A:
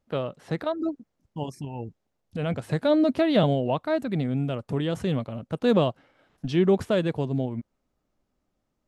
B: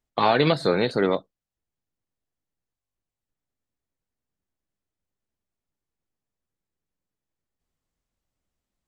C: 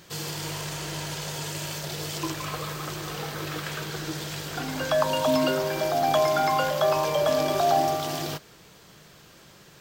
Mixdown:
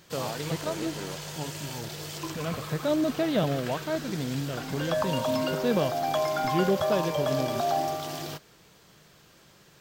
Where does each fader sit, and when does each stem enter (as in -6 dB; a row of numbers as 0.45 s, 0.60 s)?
-5.0 dB, -17.0 dB, -5.0 dB; 0.00 s, 0.00 s, 0.00 s